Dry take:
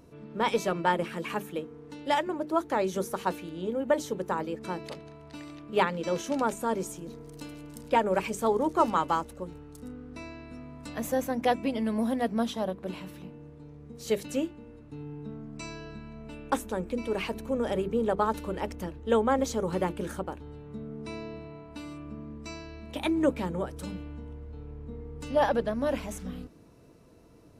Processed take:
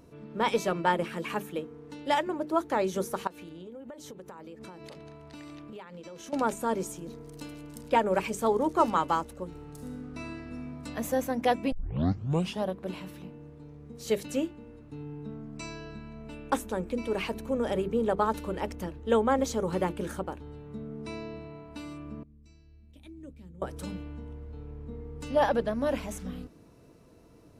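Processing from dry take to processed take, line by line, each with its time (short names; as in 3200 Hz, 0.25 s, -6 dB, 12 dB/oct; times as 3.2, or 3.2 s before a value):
3.27–6.33 compressor 20:1, threshold -40 dBFS
9.49–10.65 reverb throw, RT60 2 s, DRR 0.5 dB
11.72 tape start 0.91 s
22.23–23.62 passive tone stack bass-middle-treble 10-0-1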